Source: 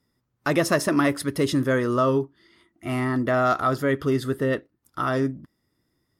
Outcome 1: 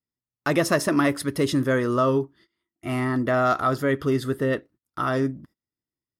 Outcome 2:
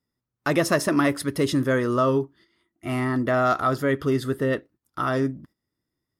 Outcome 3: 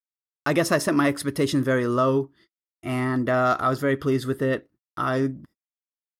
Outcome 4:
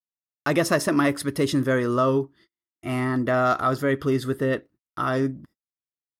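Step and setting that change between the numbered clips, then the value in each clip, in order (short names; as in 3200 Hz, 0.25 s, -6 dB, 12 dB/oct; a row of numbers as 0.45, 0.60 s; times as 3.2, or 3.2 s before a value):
gate, range: -22, -10, -54, -41 dB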